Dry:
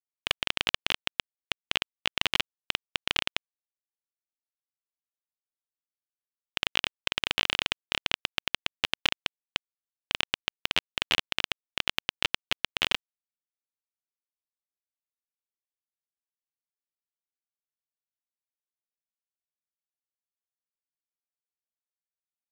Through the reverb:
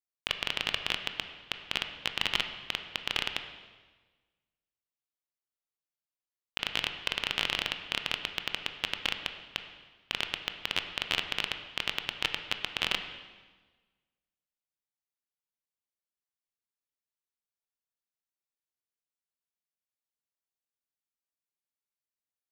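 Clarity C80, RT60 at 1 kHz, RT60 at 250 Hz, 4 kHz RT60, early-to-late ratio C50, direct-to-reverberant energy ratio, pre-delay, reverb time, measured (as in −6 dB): 10.0 dB, 1.3 s, 1.5 s, 1.2 s, 8.5 dB, 6.5 dB, 18 ms, 1.3 s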